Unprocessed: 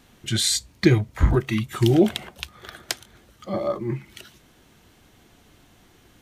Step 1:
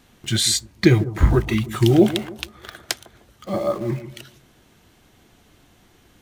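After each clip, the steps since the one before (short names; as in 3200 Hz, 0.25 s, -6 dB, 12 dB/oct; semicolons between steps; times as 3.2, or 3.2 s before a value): in parallel at -9.5 dB: bit-crush 6-bit; on the sum: analogue delay 0.151 s, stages 1024, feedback 31%, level -13 dB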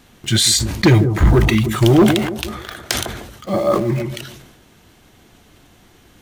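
hard clip -11.5 dBFS, distortion -12 dB; sustainer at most 51 dB/s; gain +5 dB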